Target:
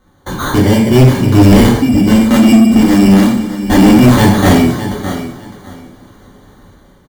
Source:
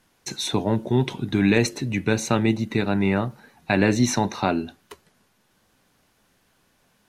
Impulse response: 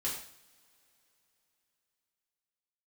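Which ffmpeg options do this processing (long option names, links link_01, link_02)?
-filter_complex "[0:a]asettb=1/sr,asplit=3[link_01][link_02][link_03];[link_01]atrim=end=1.704[link_04];[link_02]atrim=start=1.7:end=3.96,asetpts=PTS-STARTPTS,afade=type=in:duration=0.004:curve=qsin,afade=type=out:start_time=2.256:duration=0.004:curve=qsin,highpass=frequency=200:width=0.5412,highpass=frequency=200:width=1.3066,equalizer=frequency=240:width_type=q:width=4:gain=7,equalizer=frequency=420:width_type=q:width=4:gain=-9,equalizer=frequency=640:width_type=q:width=4:gain=-8,equalizer=frequency=1400:width_type=q:width=4:gain=-7,equalizer=frequency=2100:width_type=q:width=4:gain=-7,lowpass=frequency=3000:width=0.5412,lowpass=frequency=3000:width=1.3066[link_05];[link_03]atrim=start=3.956[link_06];[link_04][link_05]acrossfade=duration=0.004:curve1=hsin:curve2=qsin[link_07];[link_07][link_06]acrossfade=duration=0.004:curve1=qsin:curve2=hsin,dynaudnorm=framelen=510:gausssize=3:maxgain=9dB,aecho=1:1:607|1214:0.178|0.0338,acrusher=samples=17:mix=1:aa=0.000001,lowshelf=frequency=310:gain=10[link_08];[1:a]atrim=start_sample=2205[link_09];[link_08][link_09]afir=irnorm=-1:irlink=0,acontrast=70,volume=-1dB"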